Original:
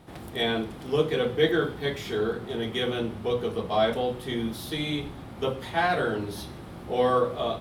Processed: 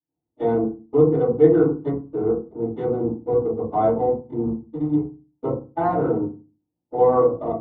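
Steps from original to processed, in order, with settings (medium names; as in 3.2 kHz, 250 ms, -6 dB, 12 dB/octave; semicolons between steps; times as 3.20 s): local Wiener filter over 25 samples; gate -30 dBFS, range -49 dB; Savitzky-Golay filter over 65 samples; bass shelf 120 Hz -7.5 dB; FDN reverb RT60 0.31 s, low-frequency decay 1.45×, high-frequency decay 0.35×, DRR -10 dB; trim -5.5 dB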